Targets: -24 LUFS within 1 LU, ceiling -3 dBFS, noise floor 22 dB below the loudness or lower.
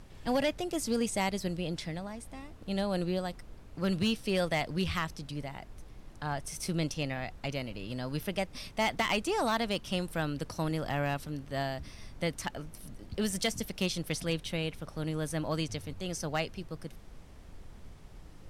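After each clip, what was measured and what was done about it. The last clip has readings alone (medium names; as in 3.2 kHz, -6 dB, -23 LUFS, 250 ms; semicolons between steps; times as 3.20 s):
clipped samples 0.3%; clipping level -22.0 dBFS; noise floor -51 dBFS; noise floor target -56 dBFS; loudness -33.5 LUFS; peak level -22.0 dBFS; loudness target -24.0 LUFS
-> clip repair -22 dBFS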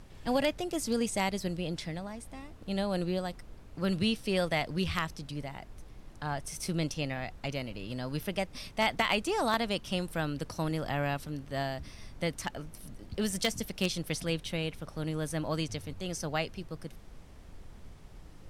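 clipped samples 0.0%; noise floor -51 dBFS; noise floor target -56 dBFS
-> noise print and reduce 6 dB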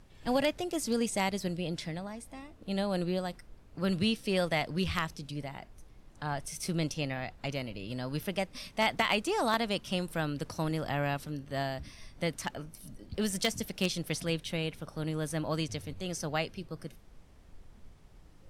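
noise floor -56 dBFS; loudness -33.5 LUFS; peak level -13.0 dBFS; loudness target -24.0 LUFS
-> trim +9.5 dB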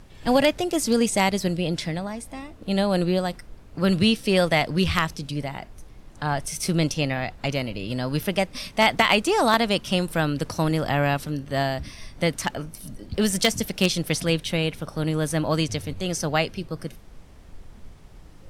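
loudness -24.0 LUFS; peak level -3.5 dBFS; noise floor -46 dBFS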